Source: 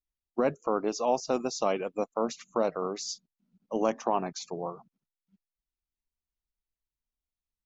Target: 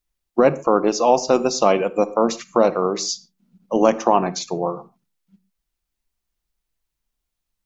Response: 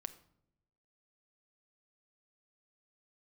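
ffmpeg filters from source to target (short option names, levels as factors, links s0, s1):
-filter_complex "[0:a]asplit=2[s0][s1];[1:a]atrim=start_sample=2205,atrim=end_sample=6615[s2];[s1][s2]afir=irnorm=-1:irlink=0,volume=3.98[s3];[s0][s3]amix=inputs=2:normalize=0"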